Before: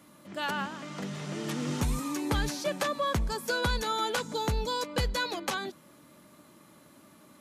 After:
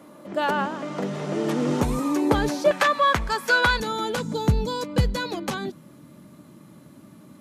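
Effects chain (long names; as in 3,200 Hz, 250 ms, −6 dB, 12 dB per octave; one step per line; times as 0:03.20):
parametric band 500 Hz +13.5 dB 2.8 octaves, from 0:02.71 1,600 Hz, from 0:03.80 140 Hz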